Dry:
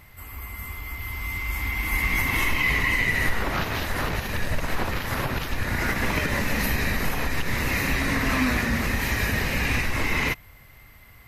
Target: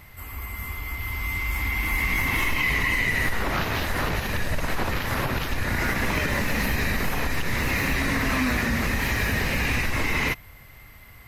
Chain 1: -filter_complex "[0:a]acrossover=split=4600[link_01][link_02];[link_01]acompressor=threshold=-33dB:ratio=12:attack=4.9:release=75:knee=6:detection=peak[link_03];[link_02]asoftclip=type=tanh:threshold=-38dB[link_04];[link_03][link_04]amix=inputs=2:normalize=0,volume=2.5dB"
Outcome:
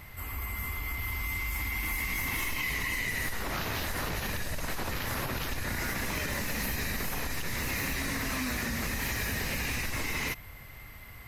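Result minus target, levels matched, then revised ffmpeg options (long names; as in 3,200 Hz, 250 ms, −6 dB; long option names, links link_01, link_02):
downward compressor: peak gain reduction +10.5 dB
-filter_complex "[0:a]acrossover=split=4600[link_01][link_02];[link_01]acompressor=threshold=-21.5dB:ratio=12:attack=4.9:release=75:knee=6:detection=peak[link_03];[link_02]asoftclip=type=tanh:threshold=-38dB[link_04];[link_03][link_04]amix=inputs=2:normalize=0,volume=2.5dB"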